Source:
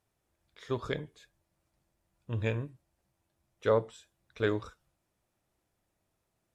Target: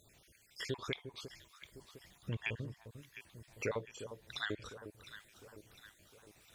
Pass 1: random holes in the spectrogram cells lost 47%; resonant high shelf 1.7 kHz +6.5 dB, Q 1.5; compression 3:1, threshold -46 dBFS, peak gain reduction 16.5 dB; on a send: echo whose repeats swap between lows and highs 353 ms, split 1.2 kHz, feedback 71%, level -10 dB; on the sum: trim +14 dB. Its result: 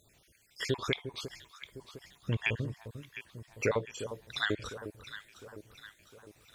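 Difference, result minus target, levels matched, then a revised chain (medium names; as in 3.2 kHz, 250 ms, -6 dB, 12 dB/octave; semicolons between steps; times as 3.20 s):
compression: peak gain reduction -7.5 dB
random holes in the spectrogram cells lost 47%; resonant high shelf 1.7 kHz +6.5 dB, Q 1.5; compression 3:1, threshold -57.5 dBFS, peak gain reduction 24.5 dB; on a send: echo whose repeats swap between lows and highs 353 ms, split 1.2 kHz, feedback 71%, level -10 dB; on the sum: trim +14 dB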